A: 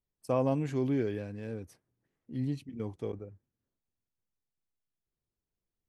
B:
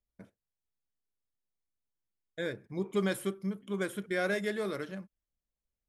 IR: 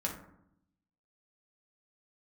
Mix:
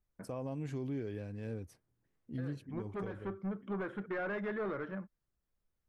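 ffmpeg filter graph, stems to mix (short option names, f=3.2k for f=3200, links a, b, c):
-filter_complex "[0:a]lowshelf=f=85:g=9.5,volume=-2.5dB,asplit=2[a][b];[1:a]asoftclip=type=tanh:threshold=-33.5dB,lowpass=f=1.5k:t=q:w=1.5,volume=2dB[c];[b]apad=whole_len=259613[d];[c][d]sidechaincompress=threshold=-36dB:ratio=8:attack=16:release=348[e];[a][e]amix=inputs=2:normalize=0,alimiter=level_in=6.5dB:limit=-24dB:level=0:latency=1:release=363,volume=-6.5dB"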